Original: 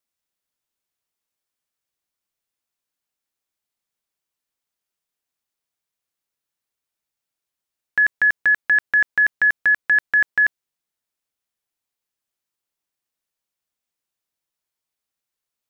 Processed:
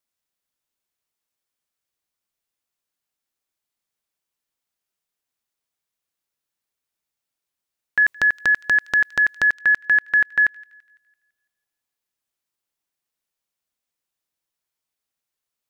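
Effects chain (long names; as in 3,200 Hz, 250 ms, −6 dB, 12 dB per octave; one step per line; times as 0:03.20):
0:08.02–0:09.48: transient designer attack −2 dB, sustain +10 dB
delay with a high-pass on its return 168 ms, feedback 43%, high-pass 2,400 Hz, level −19 dB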